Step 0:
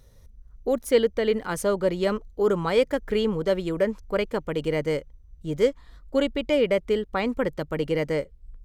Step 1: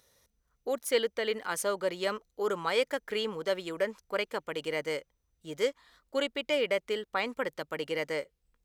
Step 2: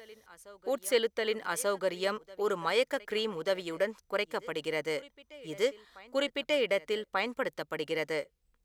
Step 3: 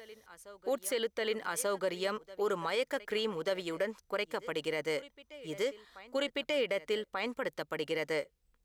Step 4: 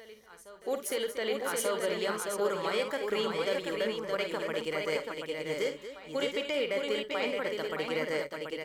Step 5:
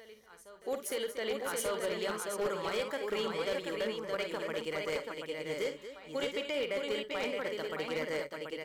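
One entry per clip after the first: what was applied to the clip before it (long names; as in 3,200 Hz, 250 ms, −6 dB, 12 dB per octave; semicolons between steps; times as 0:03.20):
high-pass filter 1,100 Hz 6 dB per octave
backwards echo 1,188 ms −21 dB
brickwall limiter −23.5 dBFS, peak gain reduction 8.5 dB
multi-tap delay 51/72/235/617/733 ms −8.5/−19/−11/−4.5/−5.5 dB
wavefolder on the positive side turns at −24 dBFS; level −3 dB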